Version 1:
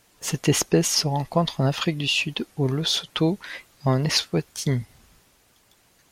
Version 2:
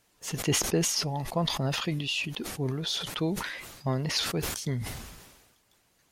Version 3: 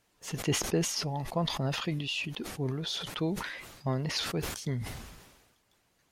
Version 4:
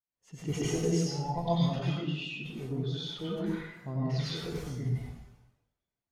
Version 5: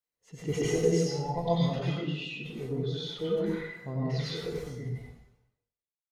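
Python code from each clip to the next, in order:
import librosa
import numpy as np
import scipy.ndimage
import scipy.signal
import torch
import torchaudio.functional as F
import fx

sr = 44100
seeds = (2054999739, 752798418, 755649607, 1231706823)

y1 = fx.sustainer(x, sr, db_per_s=45.0)
y1 = y1 * librosa.db_to_amplitude(-8.0)
y2 = fx.high_shelf(y1, sr, hz=5100.0, db=-5.0)
y2 = y2 * librosa.db_to_amplitude(-2.0)
y3 = fx.rev_plate(y2, sr, seeds[0], rt60_s=1.2, hf_ratio=0.8, predelay_ms=80, drr_db=-7.0)
y3 = fx.spectral_expand(y3, sr, expansion=1.5)
y3 = y3 * librosa.db_to_amplitude(-7.0)
y4 = fx.fade_out_tail(y3, sr, length_s=2.02)
y4 = fx.small_body(y4, sr, hz=(470.0, 2000.0, 4000.0), ring_ms=35, db=10)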